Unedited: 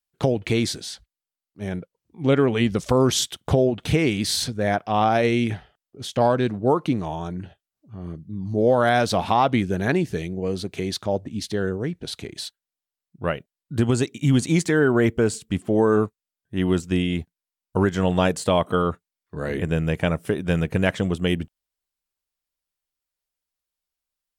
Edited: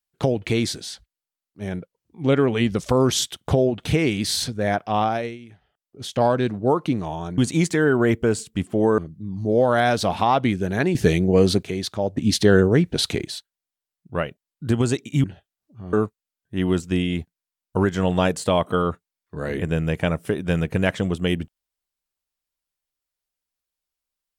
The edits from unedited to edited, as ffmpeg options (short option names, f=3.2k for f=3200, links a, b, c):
-filter_complex "[0:a]asplit=11[a][b][c][d][e][f][g][h][i][j][k];[a]atrim=end=5.38,asetpts=PTS-STARTPTS,afade=t=out:st=4.95:d=0.43:silence=0.0944061[l];[b]atrim=start=5.38:end=5.6,asetpts=PTS-STARTPTS,volume=-20.5dB[m];[c]atrim=start=5.6:end=7.382,asetpts=PTS-STARTPTS,afade=t=in:d=0.43:silence=0.0944061[n];[d]atrim=start=14.328:end=15.932[o];[e]atrim=start=8.068:end=10.042[p];[f]atrim=start=10.038:end=10.722,asetpts=PTS-STARTPTS,volume=10dB[q];[g]atrim=start=10.718:end=11.262[r];[h]atrim=start=11.258:end=12.352,asetpts=PTS-STARTPTS,volume=10dB[s];[i]atrim=start=12.348:end=14.332[t];[j]atrim=start=7.378:end=8.072[u];[k]atrim=start=15.928[v];[l][m][n]concat=n=3:v=0:a=1[w];[w][o]acrossfade=d=0.004:c1=hsin:c2=hsin[x];[x][p]acrossfade=d=0.004:c1=hsin:c2=hsin[y];[y][q]acrossfade=d=0.004:c1=hsin:c2=hsin[z];[z][r]acrossfade=d=0.004:c1=hsin:c2=hsin[aa];[aa][s]acrossfade=d=0.004:c1=hsin:c2=hsin[ab];[ab][t]acrossfade=d=0.004:c1=hsin:c2=hsin[ac];[ac][u]acrossfade=d=0.004:c1=hsin:c2=hsin[ad];[ad][v]acrossfade=d=0.004:c1=hsin:c2=hsin"